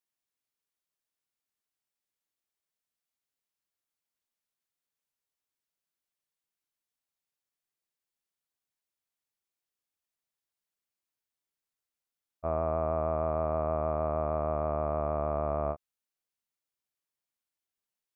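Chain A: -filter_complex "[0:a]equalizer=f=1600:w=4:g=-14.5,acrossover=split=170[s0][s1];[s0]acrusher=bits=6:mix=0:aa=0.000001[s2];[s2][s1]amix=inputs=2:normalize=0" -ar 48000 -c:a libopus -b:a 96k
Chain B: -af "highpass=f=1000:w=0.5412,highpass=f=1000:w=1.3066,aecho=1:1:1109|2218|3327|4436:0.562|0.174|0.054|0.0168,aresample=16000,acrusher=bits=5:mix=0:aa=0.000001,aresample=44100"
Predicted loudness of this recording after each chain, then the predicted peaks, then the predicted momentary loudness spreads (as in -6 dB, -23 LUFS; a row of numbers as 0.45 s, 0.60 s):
-31.5 LUFS, -40.0 LUFS; -18.5 dBFS, -22.0 dBFS; 4 LU, 9 LU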